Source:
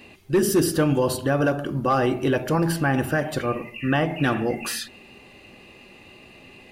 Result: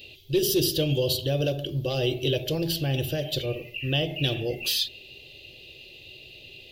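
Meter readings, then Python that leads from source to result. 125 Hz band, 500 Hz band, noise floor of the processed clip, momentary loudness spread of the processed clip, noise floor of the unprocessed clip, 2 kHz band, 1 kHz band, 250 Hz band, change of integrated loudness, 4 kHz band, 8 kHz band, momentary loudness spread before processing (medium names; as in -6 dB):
-1.5 dB, -4.0 dB, -48 dBFS, 20 LU, -49 dBFS, -7.5 dB, -16.0 dB, -7.5 dB, -3.5 dB, +8.0 dB, -2.5 dB, 8 LU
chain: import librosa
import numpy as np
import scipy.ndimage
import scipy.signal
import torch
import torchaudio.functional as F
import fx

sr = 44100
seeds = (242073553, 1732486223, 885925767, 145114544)

y = fx.curve_eq(x, sr, hz=(140.0, 210.0, 370.0, 600.0, 920.0, 1300.0, 2000.0, 3300.0, 9300.0, 14000.0), db=(0, -18, -3, -4, -21, -25, -12, 13, -8, 8))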